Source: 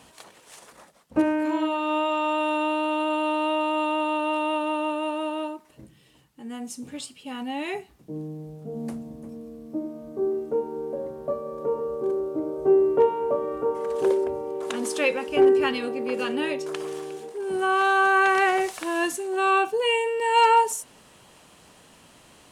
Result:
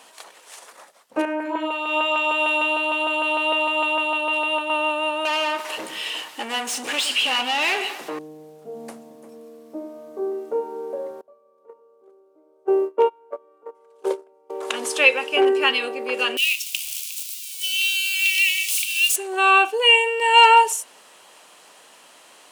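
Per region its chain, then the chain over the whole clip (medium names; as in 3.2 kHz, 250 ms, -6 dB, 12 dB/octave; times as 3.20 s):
1.25–4.70 s: LFO notch saw up 6.6 Hz 490–2500 Hz + three bands expanded up and down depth 100%
5.25–8.19 s: compression 2.5:1, threshold -39 dBFS + overdrive pedal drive 32 dB, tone 5.3 kHz, clips at -21 dBFS + echo whose repeats swap between lows and highs 116 ms, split 1.2 kHz, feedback 66%, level -12 dB
11.21–14.50 s: band-stop 1.8 kHz, Q 8.3 + gate -21 dBFS, range -27 dB
16.37–19.16 s: zero-crossing glitches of -26 dBFS + steep high-pass 2.3 kHz 72 dB/octave + waveshaping leveller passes 1
whole clip: high-pass 510 Hz 12 dB/octave; dynamic bell 2.8 kHz, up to +8 dB, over -46 dBFS, Q 2.5; trim +5 dB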